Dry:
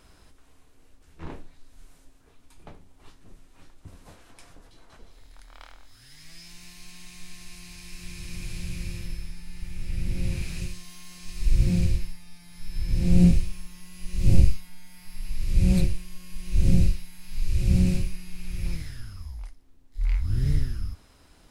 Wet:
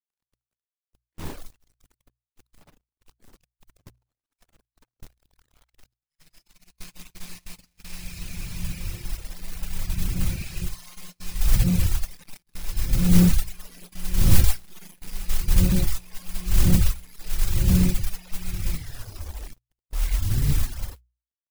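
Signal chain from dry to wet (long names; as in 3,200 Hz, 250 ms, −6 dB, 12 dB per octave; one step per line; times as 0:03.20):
low-shelf EQ 360 Hz +3 dB
on a send: backwards echo 61 ms −6 dB
on the sum: bit reduction 7 bits
in parallel at −4 dB: gain into a clipping stage and back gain 15 dB
on the sum: noise that follows the level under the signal 17 dB
noise gate −32 dBFS, range −39 dB
reverb reduction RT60 0.85 s
mains-hum notches 60/120 Hz
level −3.5 dB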